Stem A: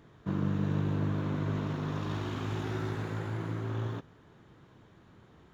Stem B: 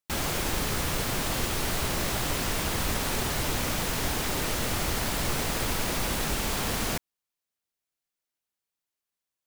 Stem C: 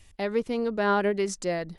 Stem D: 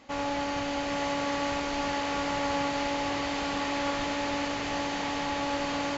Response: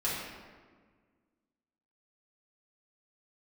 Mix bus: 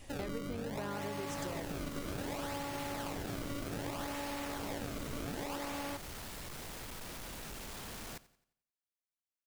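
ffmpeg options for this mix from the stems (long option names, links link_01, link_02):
-filter_complex "[0:a]volume=-11dB[link_01];[1:a]volume=30dB,asoftclip=hard,volume=-30dB,adelay=1200,volume=-13dB,asplit=2[link_02][link_03];[link_03]volume=-19dB[link_04];[2:a]acompressor=threshold=-40dB:ratio=2.5,volume=0.5dB[link_05];[3:a]acrusher=samples=29:mix=1:aa=0.000001:lfo=1:lforange=46.4:lforate=0.64,volume=-6dB[link_06];[link_04]aecho=0:1:88|176|264|352|440|528:1|0.41|0.168|0.0689|0.0283|0.0116[link_07];[link_01][link_02][link_05][link_06][link_07]amix=inputs=5:normalize=0,acompressor=threshold=-36dB:ratio=6"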